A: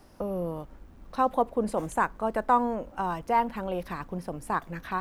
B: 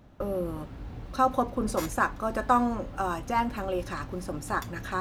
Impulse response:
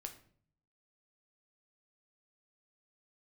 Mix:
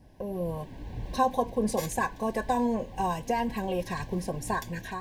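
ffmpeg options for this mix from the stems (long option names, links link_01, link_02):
-filter_complex "[0:a]alimiter=limit=-21dB:level=0:latency=1,volume=-10dB,asplit=2[link_01][link_02];[1:a]flanger=delay=0.2:depth=4.2:regen=68:speed=2:shape=triangular,adynamicequalizer=threshold=0.00501:dfrequency=2600:dqfactor=0.7:tfrequency=2600:tqfactor=0.7:attack=5:release=100:ratio=0.375:range=2.5:mode=boostabove:tftype=highshelf,volume=2dB[link_03];[link_02]apad=whole_len=220653[link_04];[link_03][link_04]sidechaincompress=threshold=-49dB:ratio=5:attack=33:release=1200[link_05];[link_01][link_05]amix=inputs=2:normalize=0,dynaudnorm=framelen=150:gausssize=5:maxgain=10dB,asuperstop=centerf=1300:order=20:qfactor=3.5"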